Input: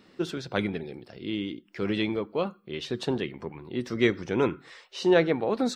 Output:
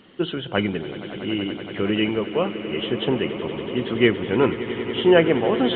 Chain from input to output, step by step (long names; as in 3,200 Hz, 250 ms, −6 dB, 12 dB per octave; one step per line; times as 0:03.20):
hearing-aid frequency compression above 2,800 Hz 4 to 1
echo that builds up and dies away 94 ms, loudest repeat 8, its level −16.5 dB
level +5.5 dB